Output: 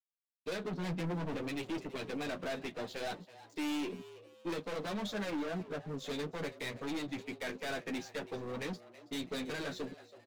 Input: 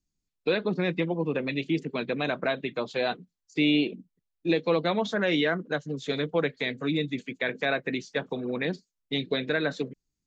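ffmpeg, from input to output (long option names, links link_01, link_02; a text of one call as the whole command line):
ffmpeg -i in.wav -filter_complex "[0:a]asettb=1/sr,asplit=3[link_01][link_02][link_03];[link_01]atrim=end=0.834[link_04];[link_02]atrim=start=0.83:end=1.36,asetpts=PTS-STARTPTS,afade=type=in:duration=0.004:curve=qsin,afade=type=out:start_time=0.526:duration=0.004:curve=qsin,equalizer=frequency=130:width_type=o:width=2.8:gain=7[link_05];[link_03]atrim=start=1.356[link_06];[link_04][link_05]acrossfade=duration=0.004:curve1=hsin:curve2=qsin[link_07];[link_07][link_06]acrossfade=duration=0.004:curve1=qsin:curve2=hsin,asettb=1/sr,asplit=3[link_08][link_09][link_10];[link_08]atrim=end=5.304[link_11];[link_09]atrim=start=5.3:end=5.93,asetpts=PTS-STARTPTS,afade=type=in:duration=0.004:curve=qsin,afade=type=out:start_time=0.626:duration=0.004:curve=qsin,lowpass=1200[link_12];[link_10]atrim=start=5.926[link_13];[link_11][link_12]acrossfade=duration=0.004:curve1=hsin:curve2=qsin[link_14];[link_14][link_13]acrossfade=duration=0.004:curve1=qsin:curve2=hsin,aeval=exprs='(tanh(50.1*val(0)+0.15)-tanh(0.15))/50.1':channel_layout=same,flanger=delay=9.4:depth=2.6:regen=-22:speed=0.58:shape=triangular,aeval=exprs='sgn(val(0))*max(abs(val(0))-0.00112,0)':channel_layout=same,asplit=4[link_15][link_16][link_17][link_18];[link_16]adelay=326,afreqshift=110,volume=-17dB[link_19];[link_17]adelay=652,afreqshift=220,volume=-25.4dB[link_20];[link_18]adelay=978,afreqshift=330,volume=-33.8dB[link_21];[link_15][link_19][link_20][link_21]amix=inputs=4:normalize=0,volume=2.5dB" out.wav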